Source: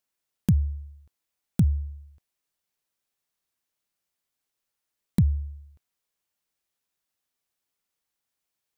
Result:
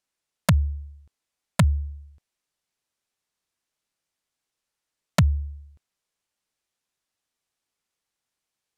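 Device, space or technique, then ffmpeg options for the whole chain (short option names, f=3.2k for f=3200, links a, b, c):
overflowing digital effects unit: -af "aeval=exprs='(mod(4.22*val(0)+1,2)-1)/4.22':c=same,lowpass=9.9k,volume=2dB"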